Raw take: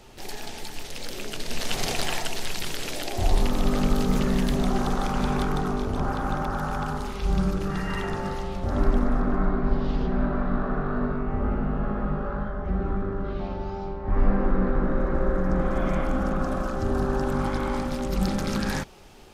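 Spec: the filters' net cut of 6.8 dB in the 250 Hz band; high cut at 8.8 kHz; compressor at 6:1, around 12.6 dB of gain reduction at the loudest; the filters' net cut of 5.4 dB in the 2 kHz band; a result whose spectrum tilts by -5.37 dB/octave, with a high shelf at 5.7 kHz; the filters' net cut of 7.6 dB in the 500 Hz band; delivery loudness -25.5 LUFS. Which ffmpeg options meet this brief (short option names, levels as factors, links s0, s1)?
-af "lowpass=8800,equalizer=f=250:t=o:g=-7.5,equalizer=f=500:t=o:g=-7,equalizer=f=2000:t=o:g=-6.5,highshelf=f=5700:g=-3.5,acompressor=threshold=0.0355:ratio=6,volume=3.98"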